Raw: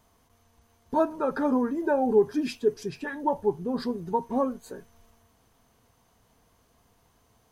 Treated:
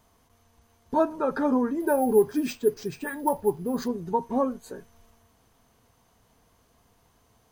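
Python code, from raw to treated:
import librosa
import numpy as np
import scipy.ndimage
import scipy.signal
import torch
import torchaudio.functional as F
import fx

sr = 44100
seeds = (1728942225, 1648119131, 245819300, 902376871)

y = fx.resample_bad(x, sr, factor=4, down='none', up='hold', at=(1.8, 3.88))
y = y * librosa.db_to_amplitude(1.0)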